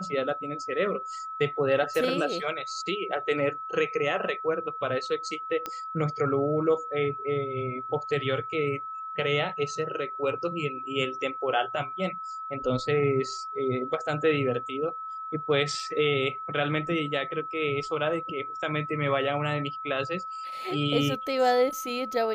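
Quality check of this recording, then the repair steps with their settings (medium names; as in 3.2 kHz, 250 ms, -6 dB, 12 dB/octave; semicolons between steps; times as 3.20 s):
whine 1.3 kHz -34 dBFS
5.66 s: pop -17 dBFS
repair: de-click; band-stop 1.3 kHz, Q 30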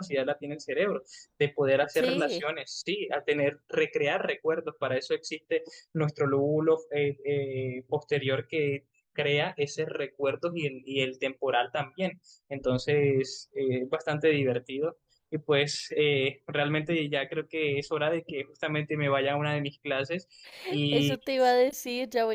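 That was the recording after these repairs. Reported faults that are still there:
nothing left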